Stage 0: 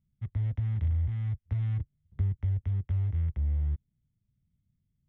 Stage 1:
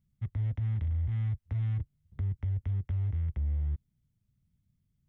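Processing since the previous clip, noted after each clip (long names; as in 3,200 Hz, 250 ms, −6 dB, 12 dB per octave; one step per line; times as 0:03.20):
brickwall limiter −27.5 dBFS, peak gain reduction 8 dB
level +1.5 dB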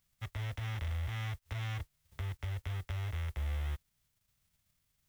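spectral envelope flattened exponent 0.6
parametric band 210 Hz −11.5 dB 2.7 octaves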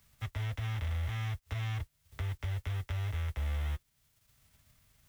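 notch comb filter 180 Hz
multiband upward and downward compressor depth 40%
level +2.5 dB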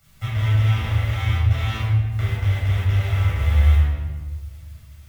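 convolution reverb RT60 1.4 s, pre-delay 11 ms, DRR −8.5 dB
level +2 dB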